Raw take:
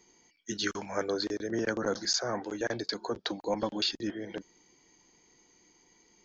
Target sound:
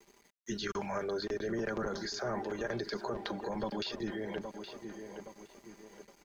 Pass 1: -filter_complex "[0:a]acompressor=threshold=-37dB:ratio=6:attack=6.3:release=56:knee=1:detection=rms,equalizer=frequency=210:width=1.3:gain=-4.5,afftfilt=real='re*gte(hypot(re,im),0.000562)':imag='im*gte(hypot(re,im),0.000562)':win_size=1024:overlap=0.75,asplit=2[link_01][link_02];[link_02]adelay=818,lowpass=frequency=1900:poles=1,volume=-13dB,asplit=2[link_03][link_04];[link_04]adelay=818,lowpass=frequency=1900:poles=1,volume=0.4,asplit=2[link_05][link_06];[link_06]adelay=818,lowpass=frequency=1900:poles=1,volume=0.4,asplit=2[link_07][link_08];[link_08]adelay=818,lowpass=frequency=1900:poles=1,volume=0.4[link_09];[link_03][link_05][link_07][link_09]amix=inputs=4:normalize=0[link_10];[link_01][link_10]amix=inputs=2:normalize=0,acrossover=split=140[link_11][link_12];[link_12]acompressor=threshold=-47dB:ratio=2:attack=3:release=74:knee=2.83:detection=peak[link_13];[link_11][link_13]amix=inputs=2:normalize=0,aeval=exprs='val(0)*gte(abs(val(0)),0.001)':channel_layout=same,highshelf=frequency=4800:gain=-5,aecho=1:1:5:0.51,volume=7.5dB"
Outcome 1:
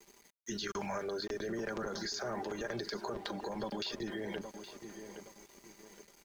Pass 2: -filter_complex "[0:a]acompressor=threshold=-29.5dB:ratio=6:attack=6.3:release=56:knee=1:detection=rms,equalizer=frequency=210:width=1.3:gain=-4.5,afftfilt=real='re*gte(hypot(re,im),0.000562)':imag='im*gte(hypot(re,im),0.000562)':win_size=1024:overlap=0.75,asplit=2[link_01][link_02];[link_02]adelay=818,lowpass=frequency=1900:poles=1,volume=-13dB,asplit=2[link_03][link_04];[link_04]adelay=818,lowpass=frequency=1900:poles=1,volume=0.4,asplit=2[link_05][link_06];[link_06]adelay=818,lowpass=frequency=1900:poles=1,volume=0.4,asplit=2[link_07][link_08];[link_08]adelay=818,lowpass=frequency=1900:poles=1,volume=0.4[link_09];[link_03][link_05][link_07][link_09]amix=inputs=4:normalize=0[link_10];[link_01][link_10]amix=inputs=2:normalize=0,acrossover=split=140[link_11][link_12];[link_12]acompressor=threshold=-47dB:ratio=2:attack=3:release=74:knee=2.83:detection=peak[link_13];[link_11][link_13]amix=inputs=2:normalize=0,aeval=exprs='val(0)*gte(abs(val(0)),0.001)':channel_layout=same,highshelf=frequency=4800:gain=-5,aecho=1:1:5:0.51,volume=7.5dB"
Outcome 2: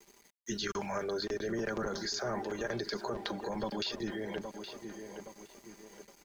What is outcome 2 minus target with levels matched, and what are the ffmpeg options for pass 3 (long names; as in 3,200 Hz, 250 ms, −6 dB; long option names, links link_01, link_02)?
8,000 Hz band +4.0 dB
-filter_complex "[0:a]acompressor=threshold=-29.5dB:ratio=6:attack=6.3:release=56:knee=1:detection=rms,equalizer=frequency=210:width=1.3:gain=-4.5,afftfilt=real='re*gte(hypot(re,im),0.000562)':imag='im*gte(hypot(re,im),0.000562)':win_size=1024:overlap=0.75,asplit=2[link_01][link_02];[link_02]adelay=818,lowpass=frequency=1900:poles=1,volume=-13dB,asplit=2[link_03][link_04];[link_04]adelay=818,lowpass=frequency=1900:poles=1,volume=0.4,asplit=2[link_05][link_06];[link_06]adelay=818,lowpass=frequency=1900:poles=1,volume=0.4,asplit=2[link_07][link_08];[link_08]adelay=818,lowpass=frequency=1900:poles=1,volume=0.4[link_09];[link_03][link_05][link_07][link_09]amix=inputs=4:normalize=0[link_10];[link_01][link_10]amix=inputs=2:normalize=0,acrossover=split=140[link_11][link_12];[link_12]acompressor=threshold=-47dB:ratio=2:attack=3:release=74:knee=2.83:detection=peak[link_13];[link_11][link_13]amix=inputs=2:normalize=0,aeval=exprs='val(0)*gte(abs(val(0)),0.001)':channel_layout=same,highshelf=frequency=4800:gain=-12.5,aecho=1:1:5:0.51,volume=7.5dB"